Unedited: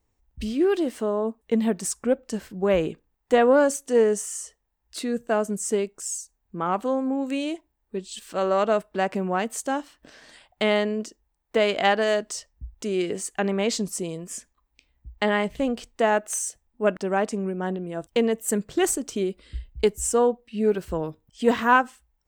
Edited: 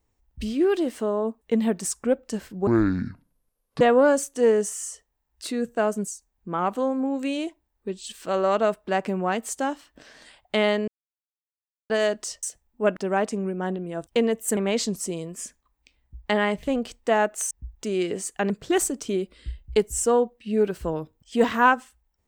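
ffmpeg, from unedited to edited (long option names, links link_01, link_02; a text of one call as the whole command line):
ffmpeg -i in.wav -filter_complex "[0:a]asplit=10[link_01][link_02][link_03][link_04][link_05][link_06][link_07][link_08][link_09][link_10];[link_01]atrim=end=2.674[link_11];[link_02]atrim=start=2.67:end=3.33,asetpts=PTS-STARTPTS,asetrate=25578,aresample=44100[link_12];[link_03]atrim=start=3.326:end=5.602[link_13];[link_04]atrim=start=6.148:end=10.95,asetpts=PTS-STARTPTS,afade=type=out:start_time=4.798:duration=0.004:curve=hsin[link_14];[link_05]atrim=start=10.95:end=11.97,asetpts=PTS-STARTPTS,volume=0[link_15];[link_06]atrim=start=11.97:end=12.502,asetpts=PTS-STARTPTS,afade=type=in:duration=0.004:curve=hsin[link_16];[link_07]atrim=start=16.428:end=18.572[link_17];[link_08]atrim=start=13.488:end=16.432[link_18];[link_09]atrim=start=12.498:end=13.492[link_19];[link_10]atrim=start=18.568[link_20];[link_11][link_12]acrossfade=duration=0.004:curve1=hsin:curve2=hsin[link_21];[link_21][link_13]acrossfade=duration=0.004:curve1=hsin:curve2=hsin[link_22];[link_14][link_15][link_16]concat=n=3:v=0:a=1[link_23];[link_22][link_23]acrossfade=duration=0.004:curve1=hsin:curve2=hsin[link_24];[link_24][link_17]acrossfade=duration=0.004:curve1=hsin:curve2=hsin[link_25];[link_25][link_18]acrossfade=duration=0.004:curve1=hsin:curve2=hsin[link_26];[link_26][link_19]acrossfade=duration=0.004:curve1=hsin:curve2=hsin[link_27];[link_27][link_20]acrossfade=duration=0.004:curve1=hsin:curve2=hsin" out.wav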